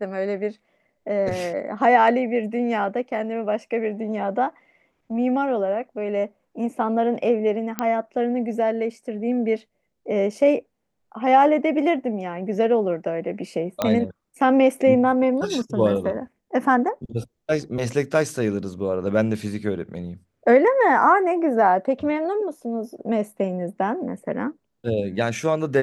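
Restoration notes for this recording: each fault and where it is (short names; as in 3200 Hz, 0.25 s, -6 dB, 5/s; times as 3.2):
7.79 pop -9 dBFS
13.82 pop -8 dBFS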